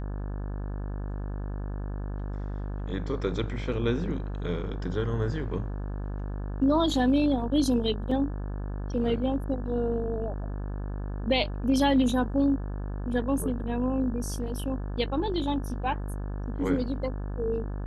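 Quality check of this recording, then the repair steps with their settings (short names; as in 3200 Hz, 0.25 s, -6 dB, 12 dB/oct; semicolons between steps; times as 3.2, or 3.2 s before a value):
buzz 50 Hz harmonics 35 -33 dBFS
8.11 gap 3.6 ms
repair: de-hum 50 Hz, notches 35; interpolate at 8.11, 3.6 ms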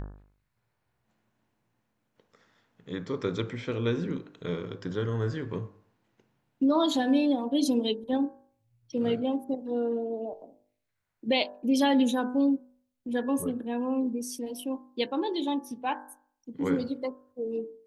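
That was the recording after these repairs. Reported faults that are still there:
none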